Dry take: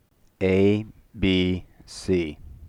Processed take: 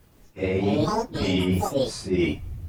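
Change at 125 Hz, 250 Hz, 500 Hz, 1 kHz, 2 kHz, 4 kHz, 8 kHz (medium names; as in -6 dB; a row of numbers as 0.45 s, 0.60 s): +0.5 dB, -1.0 dB, -1.0 dB, +14.0 dB, -1.5 dB, -0.5 dB, +6.0 dB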